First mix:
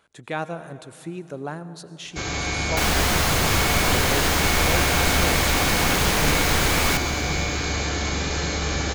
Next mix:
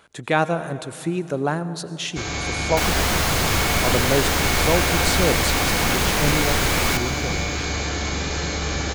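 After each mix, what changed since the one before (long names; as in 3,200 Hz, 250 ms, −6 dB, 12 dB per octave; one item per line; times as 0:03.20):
speech +9.0 dB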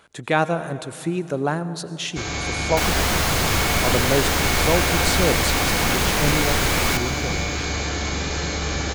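nothing changed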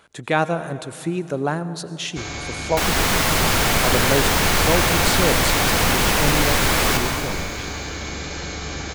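first sound: send −9.0 dB
second sound: send +10.5 dB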